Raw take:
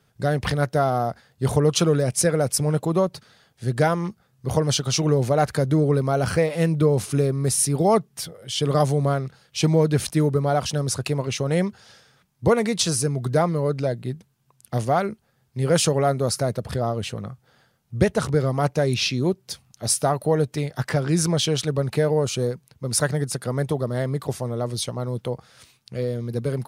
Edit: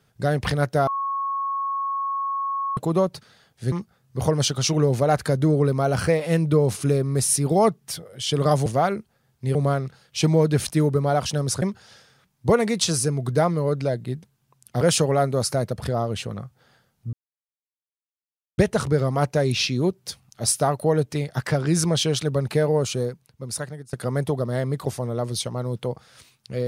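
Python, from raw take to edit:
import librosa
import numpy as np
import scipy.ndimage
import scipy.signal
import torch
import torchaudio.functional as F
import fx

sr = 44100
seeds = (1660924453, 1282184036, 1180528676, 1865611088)

y = fx.edit(x, sr, fx.bleep(start_s=0.87, length_s=1.9, hz=1100.0, db=-23.0),
    fx.cut(start_s=3.72, length_s=0.29),
    fx.cut(start_s=11.02, length_s=0.58),
    fx.move(start_s=14.79, length_s=0.89, to_s=8.95),
    fx.insert_silence(at_s=18.0, length_s=1.45),
    fx.fade_out_to(start_s=22.24, length_s=1.11, floor_db=-20.5), tone=tone)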